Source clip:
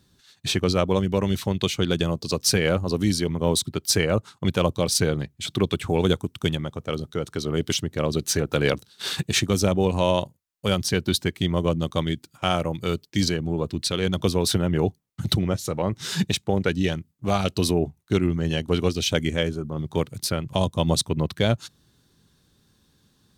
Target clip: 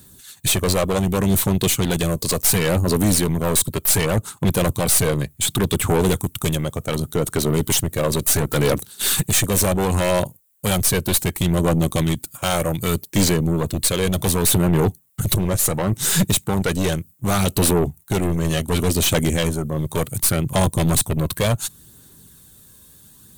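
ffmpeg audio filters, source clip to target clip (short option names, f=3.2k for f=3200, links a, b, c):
-filter_complex "[0:a]acrossover=split=1400[a][b];[b]aexciter=amount=8.5:drive=2.2:freq=7.3k[c];[a][c]amix=inputs=2:normalize=0,aeval=exprs='(tanh(15.8*val(0)+0.3)-tanh(0.3))/15.8':c=same,aphaser=in_gain=1:out_gain=1:delay=1.9:decay=0.27:speed=0.68:type=sinusoidal,volume=9dB"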